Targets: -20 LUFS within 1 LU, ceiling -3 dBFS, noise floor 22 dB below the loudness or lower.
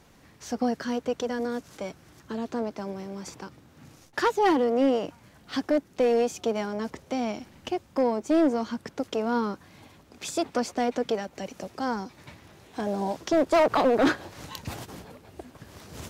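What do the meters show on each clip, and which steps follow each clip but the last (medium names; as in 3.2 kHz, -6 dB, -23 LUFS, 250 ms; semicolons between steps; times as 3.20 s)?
clipped samples 0.7%; clipping level -16.0 dBFS; loudness -27.5 LUFS; peak level -16.0 dBFS; loudness target -20.0 LUFS
-> clip repair -16 dBFS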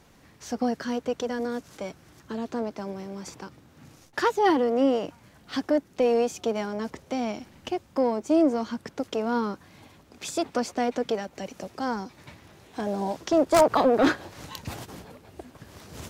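clipped samples 0.0%; loudness -26.5 LUFS; peak level -7.0 dBFS; loudness target -20.0 LUFS
-> trim +6.5 dB; peak limiter -3 dBFS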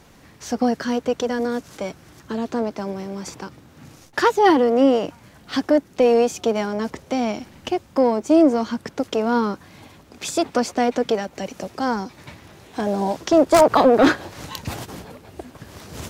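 loudness -20.5 LUFS; peak level -3.0 dBFS; noise floor -50 dBFS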